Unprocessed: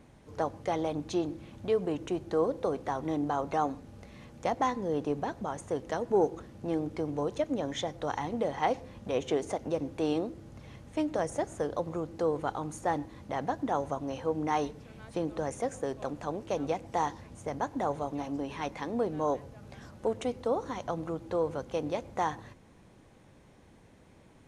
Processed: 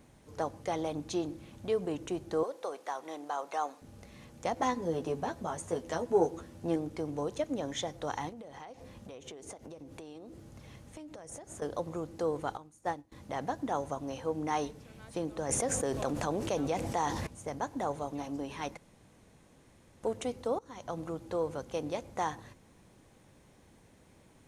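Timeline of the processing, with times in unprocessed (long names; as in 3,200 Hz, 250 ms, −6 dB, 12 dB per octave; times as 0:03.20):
0:02.43–0:03.82: high-pass filter 580 Hz
0:04.55–0:06.76: double-tracking delay 12 ms −3.5 dB
0:08.29–0:11.62: downward compressor 16 to 1, threshold −40 dBFS
0:12.57–0:13.12: expander for the loud parts 2.5 to 1, over −39 dBFS
0:15.49–0:17.27: envelope flattener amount 70%
0:18.77–0:20.03: fill with room tone
0:20.59–0:20.99: fade in, from −20 dB
whole clip: high-shelf EQ 6,000 Hz +10 dB; level −3 dB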